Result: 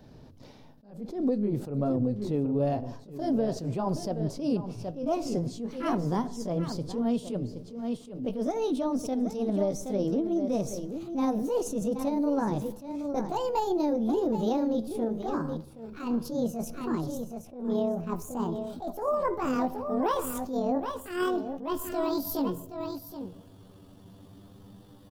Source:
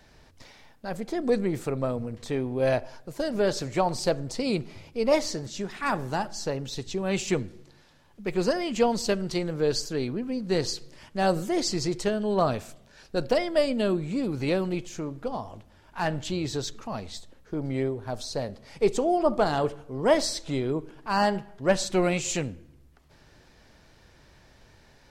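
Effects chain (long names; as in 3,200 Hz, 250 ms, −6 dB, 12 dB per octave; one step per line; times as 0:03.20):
pitch glide at a constant tempo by +12 semitones starting unshifted
graphic EQ with 10 bands 125 Hz +9 dB, 250 Hz +9 dB, 500 Hz +4 dB, 2,000 Hz −10 dB, 8,000 Hz −9 dB
on a send: single-tap delay 772 ms −12.5 dB
on the sum: downward compressor 12 to 1, threshold −23 dBFS, peak gain reduction 11.5 dB
level that may rise only so fast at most 110 dB per second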